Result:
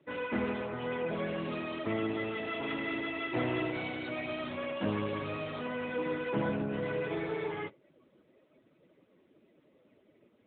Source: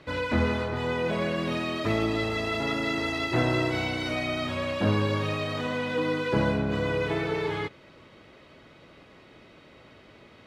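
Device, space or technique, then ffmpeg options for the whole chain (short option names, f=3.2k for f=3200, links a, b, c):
mobile call with aggressive noise cancelling: -filter_complex "[0:a]asettb=1/sr,asplit=3[a][b][c];[a]atrim=end=4.624[d];[b]atrim=start=4.62:end=5.2,asetpts=PTS-STARTPTS,afade=t=in:d=0.004:c=qsin,afade=t=out:st=0.576:d=0.004:c=qsin,highpass=f=67:p=1[e];[c]atrim=start=5.196[f];[d][e]acrossfade=d=0.004:c1=hsin:c2=qsin[g];[g][f]acrossfade=d=0.004:c1=qsin:c2=hsin,highpass=130,afftdn=nr=14:nf=-45,volume=-5.5dB" -ar 8000 -c:a libopencore_amrnb -b:a 10200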